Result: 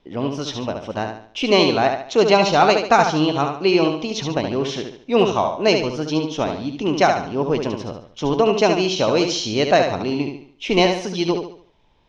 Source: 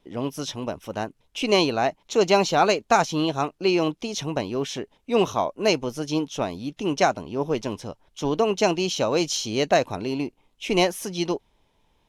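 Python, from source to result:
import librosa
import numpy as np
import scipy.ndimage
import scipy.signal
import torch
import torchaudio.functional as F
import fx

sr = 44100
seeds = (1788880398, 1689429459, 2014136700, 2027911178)

y = scipy.signal.sosfilt(scipy.signal.butter(4, 5600.0, 'lowpass', fs=sr, output='sos'), x)
y = fx.echo_feedback(y, sr, ms=72, feedback_pct=38, wet_db=-6)
y = y * librosa.db_to_amplitude(4.0)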